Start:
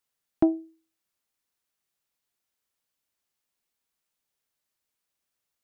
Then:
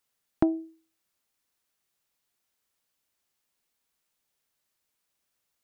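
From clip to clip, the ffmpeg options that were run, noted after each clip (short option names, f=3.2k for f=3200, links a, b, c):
-af "acompressor=threshold=-23dB:ratio=6,volume=3.5dB"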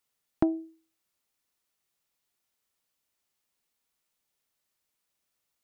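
-af "bandreject=f=1.6k:w=23,volume=-1.5dB"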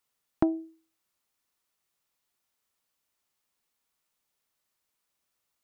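-af "equalizer=f=1.1k:t=o:w=0.9:g=3"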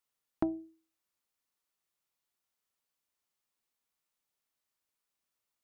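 -af "bandreject=f=60:t=h:w=6,bandreject=f=120:t=h:w=6,bandreject=f=180:t=h:w=6,volume=-6.5dB"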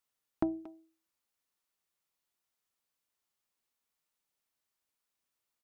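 -filter_complex "[0:a]asplit=2[a][b];[b]adelay=230,highpass=300,lowpass=3.4k,asoftclip=type=hard:threshold=-23.5dB,volume=-16dB[c];[a][c]amix=inputs=2:normalize=0"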